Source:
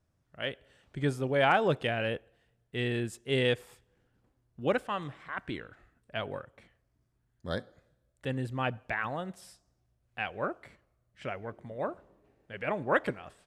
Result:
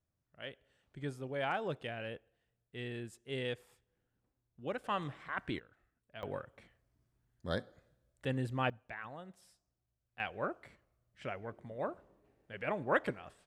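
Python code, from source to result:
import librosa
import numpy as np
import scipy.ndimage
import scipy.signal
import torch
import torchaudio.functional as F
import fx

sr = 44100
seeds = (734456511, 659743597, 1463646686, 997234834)

y = fx.gain(x, sr, db=fx.steps((0.0, -11.0), (4.84, -1.5), (5.59, -14.0), (6.23, -2.0), (8.7, -12.5), (10.2, -4.0)))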